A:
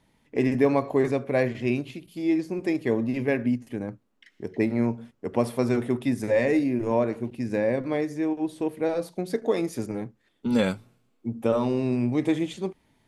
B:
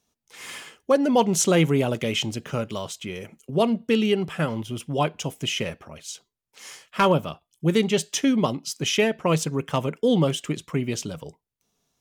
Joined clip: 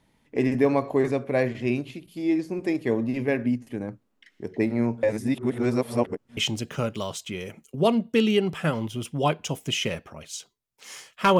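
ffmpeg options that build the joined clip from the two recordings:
-filter_complex "[0:a]apad=whole_dur=11.39,atrim=end=11.39,asplit=2[a][b];[a]atrim=end=5.032[c];[b]atrim=start=5.028:end=6.372,asetpts=PTS-STARTPTS,areverse[d];[1:a]atrim=start=2.118:end=7.14[e];[c][d]acrossfade=d=0.004:c1=hsin:c2=hsin[f];[f][e]acrossfade=d=0.004:c1=hsin:c2=hsin"

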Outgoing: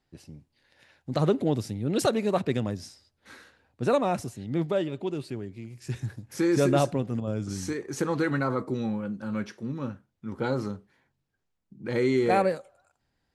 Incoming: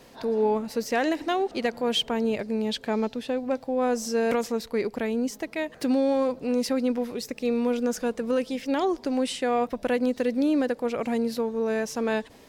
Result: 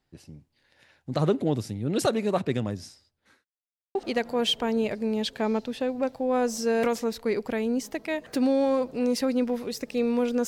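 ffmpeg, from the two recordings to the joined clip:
-filter_complex "[0:a]apad=whole_dur=10.47,atrim=end=10.47,asplit=2[a][b];[a]atrim=end=3.45,asetpts=PTS-STARTPTS,afade=t=out:st=2.91:d=0.54[c];[b]atrim=start=3.45:end=3.95,asetpts=PTS-STARTPTS,volume=0[d];[1:a]atrim=start=1.43:end=7.95,asetpts=PTS-STARTPTS,afade=t=in:d=0.004:c=hsin[e];[c][d][e]concat=n=3:v=0:a=1"

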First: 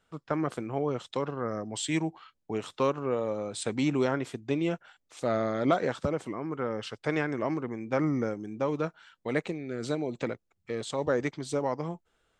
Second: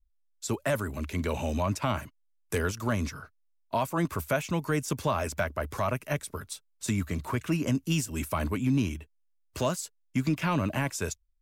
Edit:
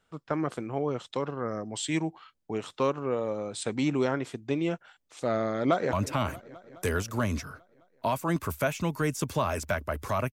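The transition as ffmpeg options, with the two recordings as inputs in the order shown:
-filter_complex "[0:a]apad=whole_dur=10.32,atrim=end=10.32,atrim=end=5.932[a];[1:a]atrim=start=1.618:end=6.01[b];[a][b]acrossfade=d=0.004:c1=hsin:c2=hsin,asplit=2[c][d];[d]afade=t=in:st=5.58:d=0.01,afade=t=out:st=5.93:d=0.01,aecho=0:1:210|420|630|840|1050|1260|1470|1680|1890|2100:0.141254|0.10594|0.0794552|0.0595914|0.0446936|0.0335202|0.0251401|0.0188551|0.0141413|0.010606[e];[c][e]amix=inputs=2:normalize=0"

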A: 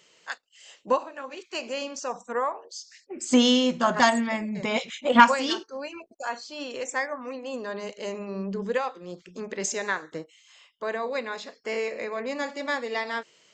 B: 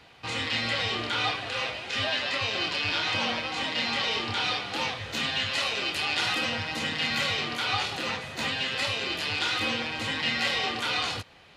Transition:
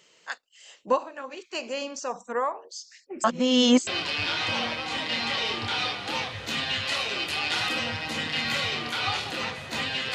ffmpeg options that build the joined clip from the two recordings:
-filter_complex "[0:a]apad=whole_dur=10.14,atrim=end=10.14,asplit=2[a][b];[a]atrim=end=3.242[c];[b]atrim=start=3.238:end=3.872,asetpts=PTS-STARTPTS,areverse[d];[1:a]atrim=start=2.528:end=8.8[e];[c][d]acrossfade=d=0.004:c1=hsin:c2=hsin[f];[f][e]acrossfade=d=0.004:c1=hsin:c2=hsin"

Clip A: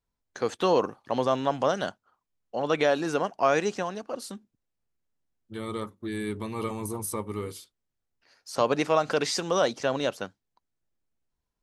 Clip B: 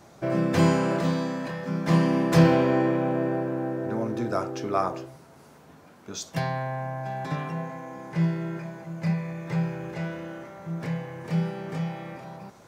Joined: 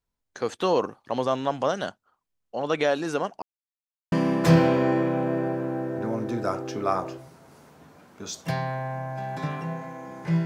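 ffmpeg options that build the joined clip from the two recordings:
-filter_complex "[0:a]apad=whole_dur=10.45,atrim=end=10.45,asplit=2[a][b];[a]atrim=end=3.42,asetpts=PTS-STARTPTS,afade=t=out:st=3.416:d=0.004:c=hsin[c];[b]atrim=start=3.42:end=4.12,asetpts=PTS-STARTPTS,volume=0[d];[1:a]atrim=start=2:end=8.33,asetpts=PTS-STARTPTS,afade=t=in:d=0.004:c=hsin[e];[c][d][e]concat=n=3:v=0:a=1"

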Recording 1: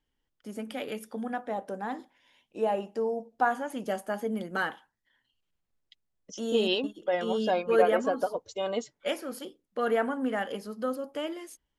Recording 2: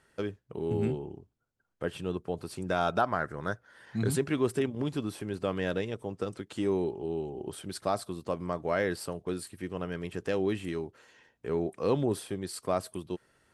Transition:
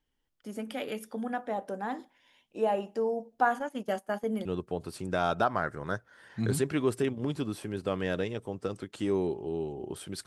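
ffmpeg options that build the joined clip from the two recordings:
-filter_complex "[0:a]asplit=3[a][b][c];[a]afade=t=out:st=3.58:d=0.02[d];[b]agate=range=-14dB:threshold=-37dB:ratio=16:release=100:detection=peak,afade=t=in:st=3.58:d=0.02,afade=t=out:st=4.45:d=0.02[e];[c]afade=t=in:st=4.45:d=0.02[f];[d][e][f]amix=inputs=3:normalize=0,apad=whole_dur=10.26,atrim=end=10.26,atrim=end=4.452[g];[1:a]atrim=start=2.018:end=7.83[h];[g][h]acrossfade=d=0.004:c1=hsin:c2=hsin"

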